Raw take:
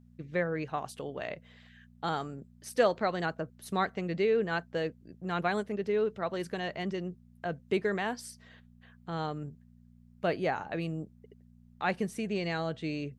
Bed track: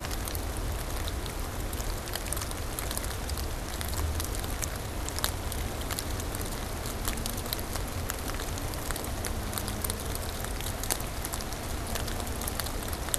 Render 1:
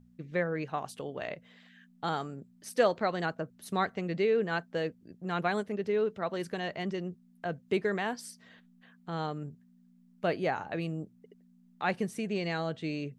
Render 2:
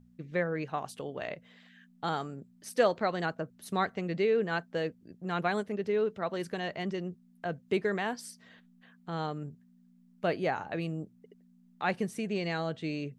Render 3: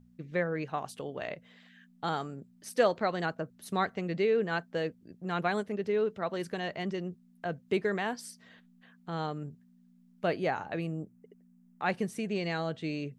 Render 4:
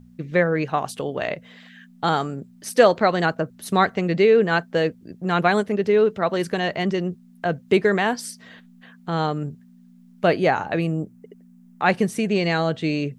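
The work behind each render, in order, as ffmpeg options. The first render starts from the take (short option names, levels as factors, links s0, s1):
-af "bandreject=f=60:t=h:w=4,bandreject=f=120:t=h:w=4"
-af anull
-filter_complex "[0:a]asettb=1/sr,asplit=3[s0][s1][s2];[s0]atrim=end=10.814[s3];[s1]atrim=start=10.81:end=11.86,asetpts=PTS-STARTPTS,afade=t=in:d=0.004:c=qsin,afade=t=out:st=1.046:d=0.004:c=qsin,equalizer=f=3900:w=1.5:g=-9[s4];[s2]atrim=start=11.856[s5];[s3][s4]acrossfade=d=0.004:c1=hsin:c2=qsin[s6];[s6][s5]acrossfade=d=0.004:c1=qsin:c2=hsin"
-af "volume=3.76,alimiter=limit=0.708:level=0:latency=1"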